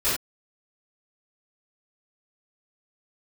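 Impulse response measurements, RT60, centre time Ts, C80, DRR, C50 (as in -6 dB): no single decay rate, 48 ms, 6.5 dB, -15.0 dB, 1.0 dB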